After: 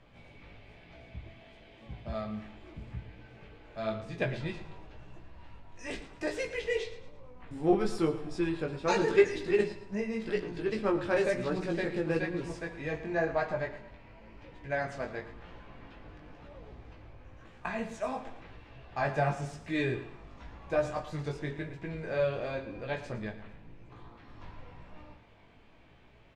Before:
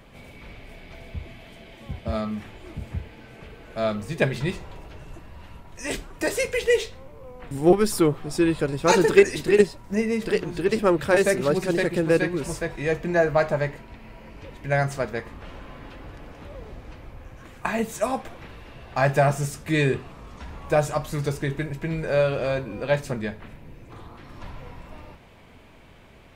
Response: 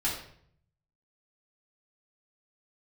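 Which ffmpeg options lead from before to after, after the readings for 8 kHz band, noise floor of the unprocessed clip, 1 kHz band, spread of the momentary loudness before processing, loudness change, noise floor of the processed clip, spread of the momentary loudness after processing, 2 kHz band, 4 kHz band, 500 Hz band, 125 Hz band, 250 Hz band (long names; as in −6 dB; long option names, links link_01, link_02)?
−16.5 dB, −48 dBFS, −8.5 dB, 23 LU, −9.0 dB, −56 dBFS, 23 LU, −8.5 dB, −10.0 dB, −9.0 dB, −10.5 dB, −9.0 dB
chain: -filter_complex "[0:a]lowpass=5100,flanger=delay=16.5:depth=3.4:speed=0.96,aecho=1:1:112|224|336|448:0.2|0.0758|0.0288|0.0109,asplit=2[link_01][link_02];[1:a]atrim=start_sample=2205[link_03];[link_02][link_03]afir=irnorm=-1:irlink=0,volume=-18dB[link_04];[link_01][link_04]amix=inputs=2:normalize=0,volume=-7dB"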